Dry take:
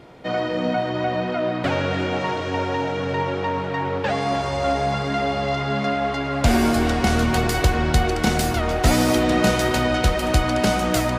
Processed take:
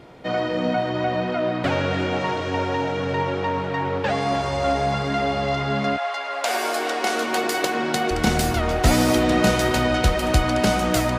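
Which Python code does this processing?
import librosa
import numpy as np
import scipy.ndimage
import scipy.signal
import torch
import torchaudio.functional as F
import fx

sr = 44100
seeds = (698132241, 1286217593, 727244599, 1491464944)

y = fx.highpass(x, sr, hz=fx.line((5.96, 700.0), (8.1, 180.0)), slope=24, at=(5.96, 8.1), fade=0.02)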